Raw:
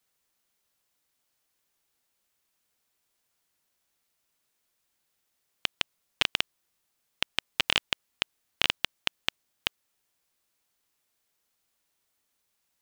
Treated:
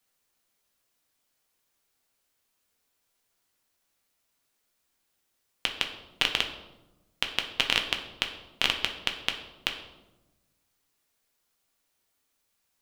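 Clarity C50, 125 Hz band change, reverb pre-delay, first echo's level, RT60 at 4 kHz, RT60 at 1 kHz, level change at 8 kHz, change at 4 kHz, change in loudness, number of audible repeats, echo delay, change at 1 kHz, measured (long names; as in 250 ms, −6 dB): 8.0 dB, +1.5 dB, 4 ms, no echo audible, 0.70 s, 0.95 s, +1.0 dB, +1.5 dB, +1.5 dB, no echo audible, no echo audible, +2.0 dB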